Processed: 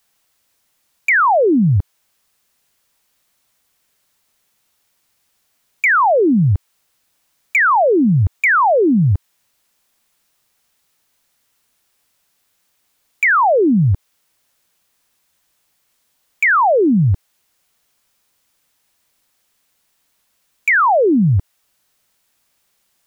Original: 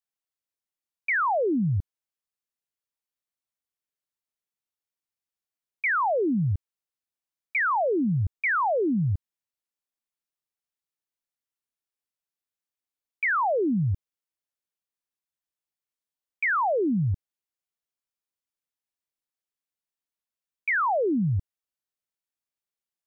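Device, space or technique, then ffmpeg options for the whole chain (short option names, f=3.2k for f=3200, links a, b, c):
mastering chain: -filter_complex "[0:a]equalizer=f=370:t=o:w=0.77:g=-3,acrossover=split=470|1500[a][b][c];[a]acompressor=threshold=-38dB:ratio=4[d];[b]acompressor=threshold=-31dB:ratio=4[e];[c]acompressor=threshold=-26dB:ratio=4[f];[d][e][f]amix=inputs=3:normalize=0,acompressor=threshold=-33dB:ratio=2,asoftclip=type=hard:threshold=-26.5dB,alimiter=level_in=35.5dB:limit=-1dB:release=50:level=0:latency=1,volume=-8.5dB"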